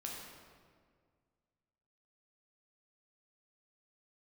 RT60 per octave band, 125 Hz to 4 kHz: 2.4, 2.2, 2.0, 1.8, 1.5, 1.2 seconds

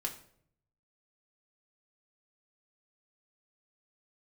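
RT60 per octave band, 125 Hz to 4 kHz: 1.1, 0.80, 0.75, 0.55, 0.50, 0.45 seconds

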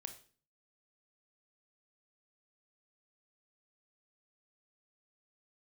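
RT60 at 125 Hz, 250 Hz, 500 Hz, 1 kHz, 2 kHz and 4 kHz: 0.65, 0.60, 0.45, 0.40, 0.40, 0.40 seconds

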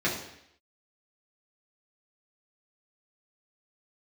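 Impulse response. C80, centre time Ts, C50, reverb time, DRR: 8.5 dB, 38 ms, 5.5 dB, 0.75 s, −7.0 dB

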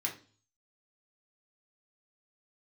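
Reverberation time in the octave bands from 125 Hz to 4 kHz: 0.70, 0.50, 0.45, 0.35, 0.35, 0.45 seconds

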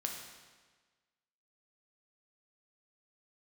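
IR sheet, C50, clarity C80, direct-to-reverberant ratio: 4.0 dB, 5.5 dB, 1.0 dB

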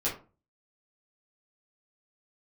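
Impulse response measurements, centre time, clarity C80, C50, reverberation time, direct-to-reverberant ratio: 27 ms, 14.0 dB, 8.0 dB, 0.35 s, −8.5 dB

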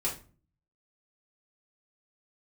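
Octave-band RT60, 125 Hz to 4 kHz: 0.75, 0.60, 0.40, 0.35, 0.30, 0.25 seconds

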